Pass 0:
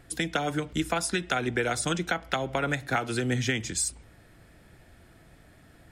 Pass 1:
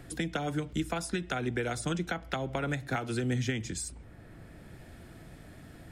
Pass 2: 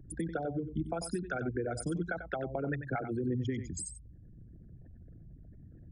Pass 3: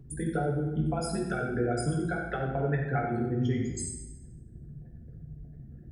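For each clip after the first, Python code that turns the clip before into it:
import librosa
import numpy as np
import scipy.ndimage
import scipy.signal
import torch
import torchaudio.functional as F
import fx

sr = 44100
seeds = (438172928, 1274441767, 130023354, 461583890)

y1 = fx.low_shelf(x, sr, hz=390.0, db=7.5)
y1 = fx.band_squash(y1, sr, depth_pct=40)
y1 = y1 * 10.0 ** (-7.5 / 20.0)
y2 = fx.envelope_sharpen(y1, sr, power=3.0)
y2 = y2 + 10.0 ** (-10.0 / 20.0) * np.pad(y2, (int(93 * sr / 1000.0), 0))[:len(y2)]
y2 = y2 * 10.0 ** (-2.5 / 20.0)
y3 = fx.rev_fdn(y2, sr, rt60_s=1.1, lf_ratio=1.2, hf_ratio=0.75, size_ms=41.0, drr_db=-3.0)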